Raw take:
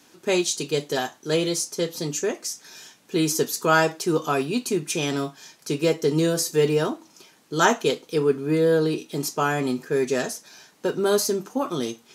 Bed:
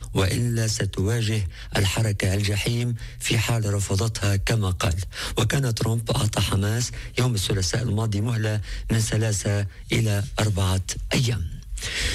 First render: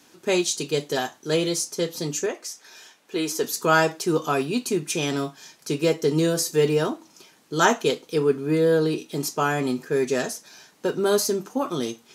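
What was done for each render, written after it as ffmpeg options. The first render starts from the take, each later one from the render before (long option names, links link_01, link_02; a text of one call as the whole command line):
ffmpeg -i in.wav -filter_complex "[0:a]asettb=1/sr,asplit=3[link_01][link_02][link_03];[link_01]atrim=end=2.264[link_04];[link_02]atrim=start=2.26:end=3.44,asetpts=PTS-STARTPTS,afade=type=in:duration=0.004:curve=qsin,afade=type=out:start_time=1.176:duration=0.004:curve=qsin,bass=frequency=250:gain=-14,treble=frequency=4000:gain=-5[link_05];[link_03]atrim=start=3.436[link_06];[link_04][link_05]acrossfade=duration=0.004:curve1=hsin:curve2=qsin[link_07];[link_07][link_06]acrossfade=duration=0.004:curve1=qsin:curve2=hsin" out.wav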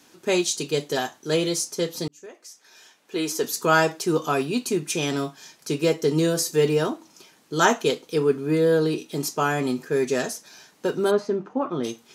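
ffmpeg -i in.wav -filter_complex "[0:a]asplit=3[link_01][link_02][link_03];[link_01]afade=type=out:start_time=11.1:duration=0.02[link_04];[link_02]lowpass=1900,afade=type=in:start_time=11.1:duration=0.02,afade=type=out:start_time=11.83:duration=0.02[link_05];[link_03]afade=type=in:start_time=11.83:duration=0.02[link_06];[link_04][link_05][link_06]amix=inputs=3:normalize=0,asplit=2[link_07][link_08];[link_07]atrim=end=2.08,asetpts=PTS-STARTPTS,afade=type=out:start_time=2.076:duration=0.004:curve=hsin[link_09];[link_08]atrim=start=2.08,asetpts=PTS-STARTPTS,afade=type=in:duration=1.17[link_10];[link_09][link_10]concat=n=2:v=0:a=1" out.wav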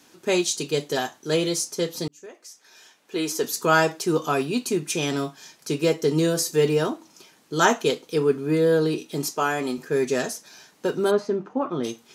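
ffmpeg -i in.wav -filter_complex "[0:a]asettb=1/sr,asplit=3[link_01][link_02][link_03];[link_01]atrim=end=9.324[link_04];[link_02]atrim=start=9.32:end=9.78,asetpts=PTS-STARTPTS,afade=type=in:duration=0.004:curve=qsin,afade=type=out:start_time=0.456:duration=0.004:curve=qsin,equalizer=frequency=120:width_type=o:width=1.6:gain=-9.5[link_05];[link_03]atrim=start=9.776[link_06];[link_04][link_05]acrossfade=duration=0.004:curve1=hsin:curve2=qsin[link_07];[link_07][link_06]acrossfade=duration=0.004:curve1=qsin:curve2=hsin" out.wav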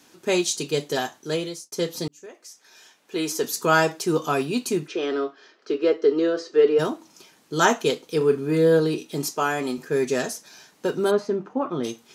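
ffmpeg -i in.wav -filter_complex "[0:a]asplit=3[link_01][link_02][link_03];[link_01]afade=type=out:start_time=4.86:duration=0.02[link_04];[link_02]highpass=frequency=290:width=0.5412,highpass=frequency=290:width=1.3066,equalizer=frequency=410:width_type=q:width=4:gain=6,equalizer=frequency=890:width_type=q:width=4:gain=-8,equalizer=frequency=1300:width_type=q:width=4:gain=4,equalizer=frequency=2400:width_type=q:width=4:gain=-7,equalizer=frequency=3600:width_type=q:width=4:gain=-6,lowpass=frequency=3900:width=0.5412,lowpass=frequency=3900:width=1.3066,afade=type=in:start_time=4.86:duration=0.02,afade=type=out:start_time=6.78:duration=0.02[link_05];[link_03]afade=type=in:start_time=6.78:duration=0.02[link_06];[link_04][link_05][link_06]amix=inputs=3:normalize=0,asettb=1/sr,asplit=3[link_07][link_08][link_09];[link_07]atrim=end=8.174[link_10];[link_08]atrim=start=8.17:end=8.8,asetpts=PTS-STARTPTS,afade=type=in:duration=0.004:curve=qsin,afade=type=out:start_time=0.626:duration=0.004:curve=qsin,asplit=2[link_11][link_12];[link_12]adelay=37,volume=-9.5dB[link_13];[link_11][link_13]amix=inputs=2:normalize=0,atrim=end_sample=27783[link_14];[link_09]atrim=start=8.796[link_15];[link_10][link_14]acrossfade=duration=0.004:curve1=hsin:curve2=qsin[link_16];[link_16][link_15]acrossfade=duration=0.004:curve1=qsin:curve2=hsin,asplit=2[link_17][link_18];[link_17]atrim=end=1.72,asetpts=PTS-STARTPTS,afade=type=out:start_time=1.17:duration=0.55[link_19];[link_18]atrim=start=1.72,asetpts=PTS-STARTPTS,afade=type=in:duration=0.004:curve=hsin[link_20];[link_19][link_20]concat=n=2:v=0:a=1" out.wav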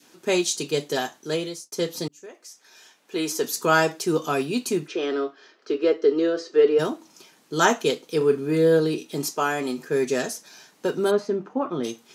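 ffmpeg -i in.wav -af "highpass=130,adynamicequalizer=threshold=0.0141:dfrequency=990:dqfactor=1.6:tfrequency=990:tqfactor=1.6:attack=5:release=100:ratio=0.375:range=2:mode=cutabove:tftype=bell" out.wav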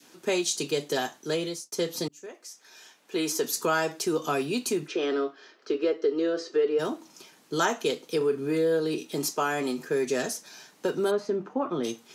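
ffmpeg -i in.wav -filter_complex "[0:a]acrossover=split=250|1700|4500[link_01][link_02][link_03][link_04];[link_01]alimiter=level_in=8.5dB:limit=-24dB:level=0:latency=1,volume=-8.5dB[link_05];[link_05][link_02][link_03][link_04]amix=inputs=4:normalize=0,acompressor=threshold=-24dB:ratio=2.5" out.wav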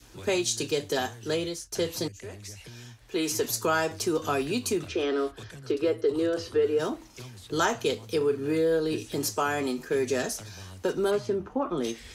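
ffmpeg -i in.wav -i bed.wav -filter_complex "[1:a]volume=-22.5dB[link_01];[0:a][link_01]amix=inputs=2:normalize=0" out.wav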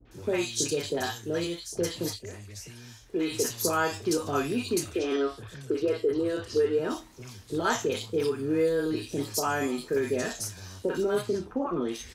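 ffmpeg -i in.wav -filter_complex "[0:a]asplit=2[link_01][link_02];[link_02]adelay=29,volume=-11.5dB[link_03];[link_01][link_03]amix=inputs=2:normalize=0,acrossover=split=720|3000[link_04][link_05][link_06];[link_05]adelay=50[link_07];[link_06]adelay=110[link_08];[link_04][link_07][link_08]amix=inputs=3:normalize=0" out.wav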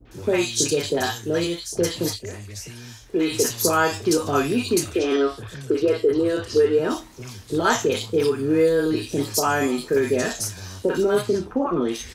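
ffmpeg -i in.wav -af "volume=7dB" out.wav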